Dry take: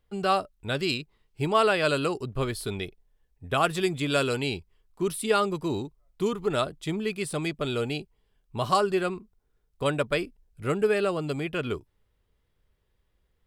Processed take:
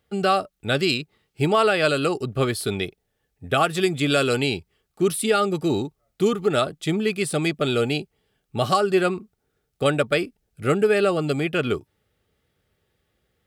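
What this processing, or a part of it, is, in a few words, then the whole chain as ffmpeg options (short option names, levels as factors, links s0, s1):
PA system with an anti-feedback notch: -af "highpass=100,asuperstop=centerf=1000:order=12:qfactor=6.3,alimiter=limit=0.15:level=0:latency=1:release=225,volume=2.24"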